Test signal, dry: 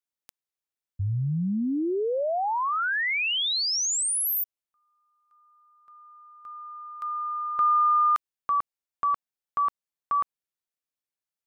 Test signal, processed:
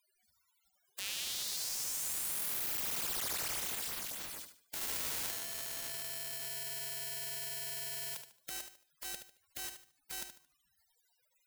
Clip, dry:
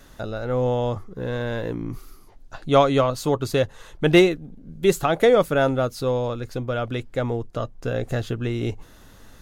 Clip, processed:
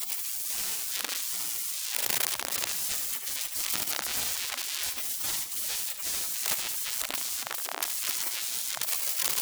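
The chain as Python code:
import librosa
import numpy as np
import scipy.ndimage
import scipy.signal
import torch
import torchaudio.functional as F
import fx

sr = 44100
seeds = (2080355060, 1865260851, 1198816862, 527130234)

y = np.sign(x) * np.sqrt(np.mean(np.square(x)))
y = fx.spec_gate(y, sr, threshold_db=-30, keep='weak')
y = fx.echo_feedback(y, sr, ms=74, feedback_pct=31, wet_db=-8.5)
y = F.gain(torch.from_numpy(y), 6.0).numpy()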